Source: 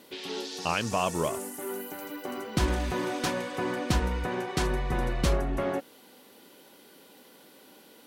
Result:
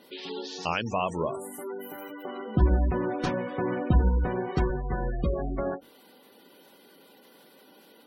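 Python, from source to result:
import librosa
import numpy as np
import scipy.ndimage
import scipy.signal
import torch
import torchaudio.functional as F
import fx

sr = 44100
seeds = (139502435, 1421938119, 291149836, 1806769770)

y = fx.spec_gate(x, sr, threshold_db=-20, keep='strong')
y = fx.tilt_eq(y, sr, slope=-2.0, at=(2.45, 4.7))
y = fx.hum_notches(y, sr, base_hz=50, count=7)
y = fx.end_taper(y, sr, db_per_s=270.0)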